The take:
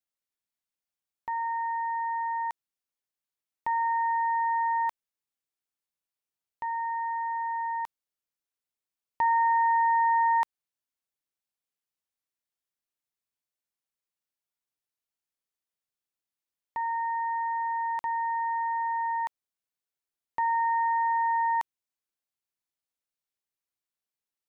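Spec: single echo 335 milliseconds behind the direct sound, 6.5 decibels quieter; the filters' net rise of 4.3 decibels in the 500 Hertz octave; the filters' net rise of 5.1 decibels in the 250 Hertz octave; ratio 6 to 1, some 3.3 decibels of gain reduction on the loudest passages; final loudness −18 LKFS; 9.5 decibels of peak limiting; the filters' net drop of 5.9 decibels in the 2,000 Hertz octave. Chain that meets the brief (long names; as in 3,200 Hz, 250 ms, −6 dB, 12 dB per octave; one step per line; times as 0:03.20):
parametric band 250 Hz +5 dB
parametric band 500 Hz +5 dB
parametric band 2,000 Hz −6.5 dB
downward compressor 6 to 1, threshold −27 dBFS
brickwall limiter −27.5 dBFS
single-tap delay 335 ms −6.5 dB
level +17.5 dB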